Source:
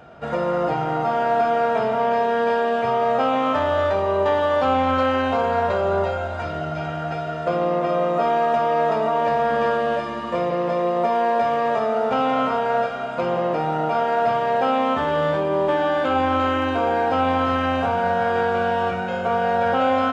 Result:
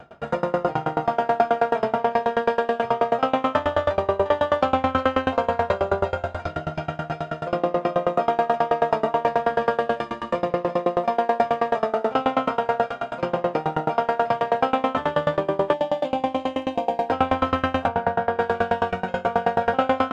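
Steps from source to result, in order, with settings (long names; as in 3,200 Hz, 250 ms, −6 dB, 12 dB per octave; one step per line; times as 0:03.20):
0:15.73–0:17.09: phaser with its sweep stopped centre 370 Hz, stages 6
0:17.87–0:18.39: high-shelf EQ 3,900 Hz → 2,900 Hz −11 dB
tremolo with a ramp in dB decaying 9.3 Hz, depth 25 dB
level +5.5 dB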